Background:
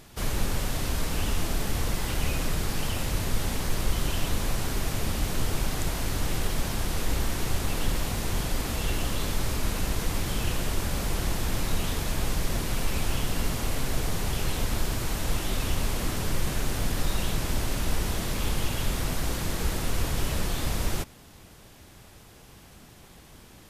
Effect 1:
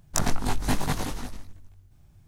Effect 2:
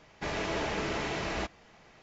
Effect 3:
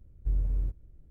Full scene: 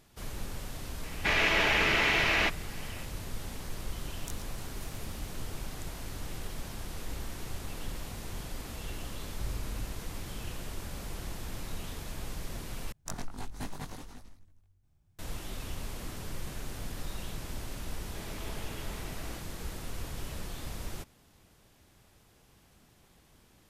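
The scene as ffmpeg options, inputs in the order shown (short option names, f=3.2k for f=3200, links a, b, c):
-filter_complex "[2:a]asplit=2[a][b];[1:a]asplit=2[c][d];[0:a]volume=-11.5dB[e];[a]equalizer=f=2.4k:w=0.73:g=14[f];[c]aderivative[g];[3:a]highpass=f=120:p=1[h];[e]asplit=2[i][j];[i]atrim=end=12.924[k];[d]atrim=end=2.27,asetpts=PTS-STARTPTS,volume=-14dB[l];[j]atrim=start=15.186[m];[f]atrim=end=2.02,asetpts=PTS-STARTPTS,volume=-0.5dB,afade=t=in:d=0.004:c=hsin,afade=t=out:st=2.016:d=0.004:c=hsin,adelay=1030[n];[g]atrim=end=2.27,asetpts=PTS-STARTPTS,volume=-17.5dB,afade=t=in:d=0.004:c=hsin,afade=t=out:st=2.266:d=0.004:c=hsin,adelay=4120[o];[h]atrim=end=1.1,asetpts=PTS-STARTPTS,volume=-1.5dB,afade=t=in:d=0.004:c=hsin,afade=t=out:st=1.096:d=0.004:c=hsin,adelay=403074S[p];[b]atrim=end=2.02,asetpts=PTS-STARTPTS,volume=-14.5dB,afade=t=in:d=0.004:c=hsin,afade=t=out:st=2.016:d=0.004:c=hsin,adelay=17930[q];[k][l]acrossfade=d=0.004:c1=hsin:c2=hsin[r];[r][m]acrossfade=d=0.004:c1=hsin:c2=hsin[s];[s][n][o][p][q]amix=inputs=5:normalize=0"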